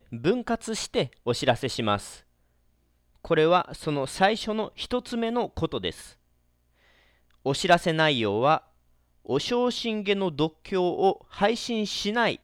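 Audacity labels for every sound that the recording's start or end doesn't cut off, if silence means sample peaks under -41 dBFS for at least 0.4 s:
3.250000	6.110000	sound
7.450000	8.590000	sound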